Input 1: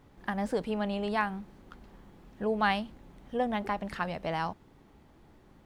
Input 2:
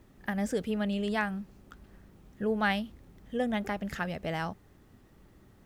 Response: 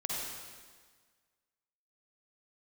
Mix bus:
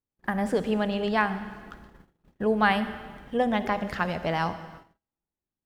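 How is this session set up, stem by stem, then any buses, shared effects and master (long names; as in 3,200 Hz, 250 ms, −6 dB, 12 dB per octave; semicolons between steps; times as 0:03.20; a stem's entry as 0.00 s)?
+1.0 dB, 0.00 s, send −17 dB, mains-hum notches 50/100/150/200/250 Hz
−5.5 dB, 0.00 s, send −7 dB, no processing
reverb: on, RT60 1.6 s, pre-delay 43 ms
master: noise gate −46 dBFS, range −39 dB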